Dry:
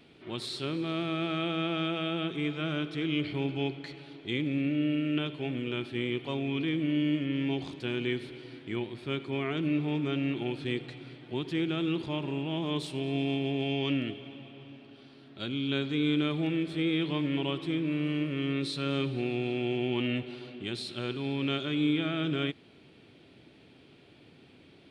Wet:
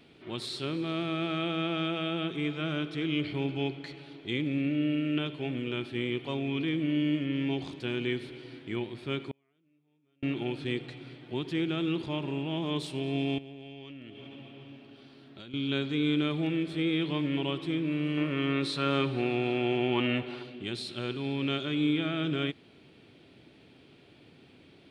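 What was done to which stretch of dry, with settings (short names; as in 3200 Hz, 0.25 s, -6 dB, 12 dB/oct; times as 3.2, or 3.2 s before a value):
9.3–10.23 flipped gate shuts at -26 dBFS, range -42 dB
13.38–15.54 compressor 20:1, threshold -41 dBFS
18.17–20.43 bell 1100 Hz +9 dB 2 oct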